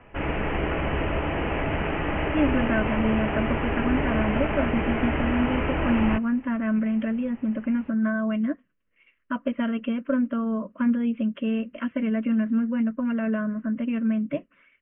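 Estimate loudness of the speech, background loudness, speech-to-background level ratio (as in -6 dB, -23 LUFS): -26.5 LUFS, -27.0 LUFS, 0.5 dB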